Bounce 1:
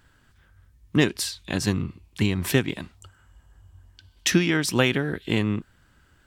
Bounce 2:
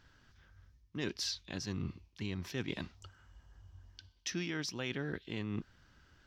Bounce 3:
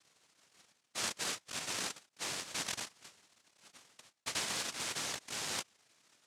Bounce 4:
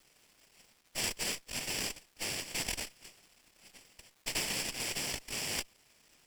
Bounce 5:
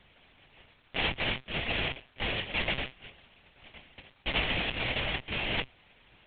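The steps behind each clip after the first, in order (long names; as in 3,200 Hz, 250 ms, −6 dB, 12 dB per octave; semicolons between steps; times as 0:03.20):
high shelf with overshoot 7,100 Hz −8 dB, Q 3; reversed playback; downward compressor 16 to 1, threshold −29 dBFS, peak gain reduction 16.5 dB; reversed playback; level −5 dB
spectral envelope exaggerated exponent 2; cochlear-implant simulation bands 1
lower of the sound and its delayed copy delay 0.38 ms; surface crackle 530 per second −58 dBFS; level +4 dB
one-pitch LPC vocoder at 8 kHz 130 Hz; level +8.5 dB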